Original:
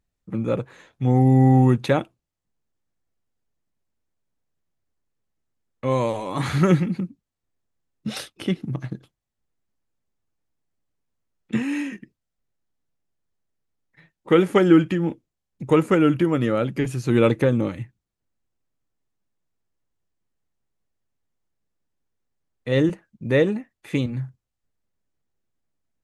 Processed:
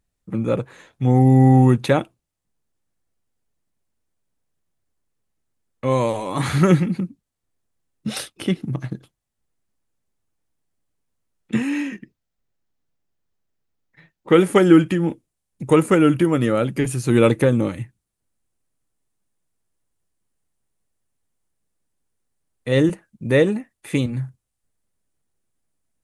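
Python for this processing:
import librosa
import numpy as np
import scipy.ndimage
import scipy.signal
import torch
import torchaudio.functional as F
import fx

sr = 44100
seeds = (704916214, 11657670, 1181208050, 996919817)

y = fx.peak_eq(x, sr, hz=9500.0, db=fx.steps((0.0, 6.0), (11.69, -3.5), (14.34, 12.0)), octaves=0.58)
y = F.gain(torch.from_numpy(y), 2.5).numpy()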